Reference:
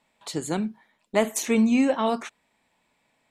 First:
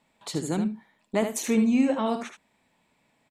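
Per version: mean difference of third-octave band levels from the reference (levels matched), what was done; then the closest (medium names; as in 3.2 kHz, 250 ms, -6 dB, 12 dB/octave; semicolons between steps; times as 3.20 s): 3.0 dB: peaking EQ 150 Hz +5.5 dB 2.7 oct; in parallel at +2.5 dB: compression, threshold -28 dBFS, peak gain reduction 15 dB; on the sum: delay 75 ms -8 dB; trim -8 dB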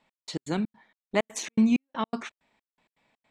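6.5 dB: low-pass 5.4 kHz 12 dB/octave; dynamic bell 640 Hz, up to -4 dB, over -36 dBFS, Q 0.84; trance gate "x..x.xx.x" 162 bpm -60 dB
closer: first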